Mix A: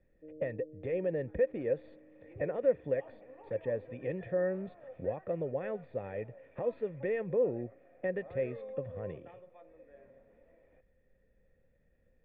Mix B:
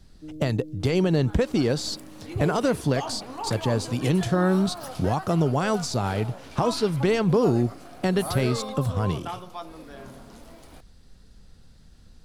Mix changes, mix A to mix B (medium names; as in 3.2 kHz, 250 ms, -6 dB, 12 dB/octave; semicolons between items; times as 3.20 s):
first sound: remove resonant low-pass 540 Hz, resonance Q 6.4; second sound +4.5 dB; master: remove cascade formant filter e